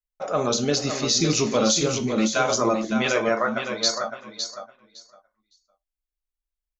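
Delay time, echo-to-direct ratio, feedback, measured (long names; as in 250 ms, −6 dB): 560 ms, −7.5 dB, 16%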